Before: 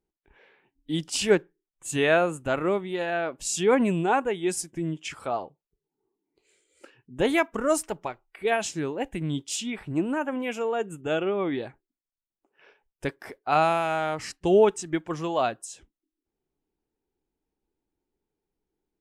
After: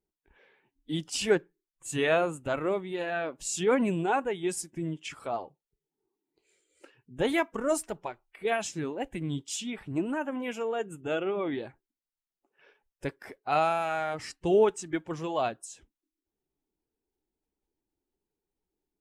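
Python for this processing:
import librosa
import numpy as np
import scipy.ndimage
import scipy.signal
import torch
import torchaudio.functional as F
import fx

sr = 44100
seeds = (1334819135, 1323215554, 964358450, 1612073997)

y = fx.spec_quant(x, sr, step_db=15)
y = y * librosa.db_to_amplitude(-3.5)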